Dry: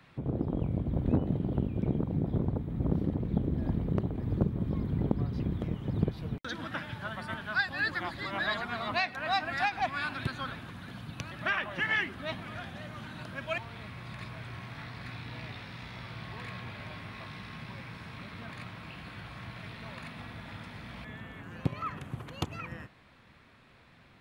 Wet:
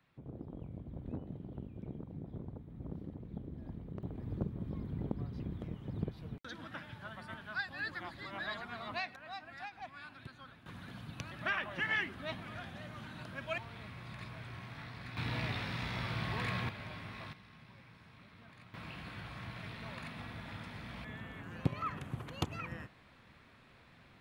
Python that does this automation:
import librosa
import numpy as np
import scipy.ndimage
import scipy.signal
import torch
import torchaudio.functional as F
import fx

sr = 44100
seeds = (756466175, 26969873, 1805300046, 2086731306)

y = fx.gain(x, sr, db=fx.steps((0.0, -15.0), (4.03, -9.0), (9.16, -16.5), (10.66, -4.5), (15.17, 5.0), (16.69, -3.0), (17.33, -14.0), (18.74, -2.0)))